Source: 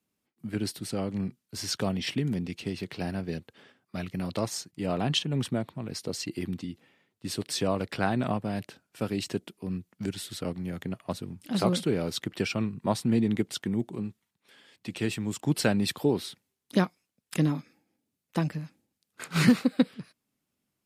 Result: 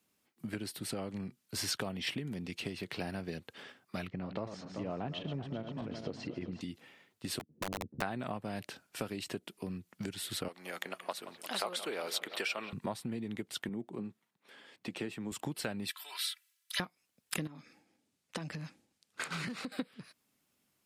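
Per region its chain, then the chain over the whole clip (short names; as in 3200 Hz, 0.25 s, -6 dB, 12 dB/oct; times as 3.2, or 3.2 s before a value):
4.07–6.61 regenerating reverse delay 0.194 s, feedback 65%, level -10 dB + tape spacing loss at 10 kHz 35 dB
7.39–8.02 ladder low-pass 280 Hz, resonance 35% + doubler 13 ms -5.5 dB + wrapped overs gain 31.5 dB
10.48–12.73 HPF 610 Hz + analogue delay 0.174 s, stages 4096, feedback 73%, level -17 dB
13.69–15.32 HPF 150 Hz + high shelf 2100 Hz -11 dB
15.9–16.8 HPF 1400 Hz 24 dB/oct + notch 6900 Hz, Q 28 + comb 3 ms, depth 86%
17.47–19.72 LPF 9200 Hz + compressor 5:1, threshold -37 dBFS
whole clip: dynamic EQ 5900 Hz, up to -6 dB, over -50 dBFS, Q 1.2; compressor 6:1, threshold -38 dBFS; low shelf 430 Hz -7 dB; gain +6.5 dB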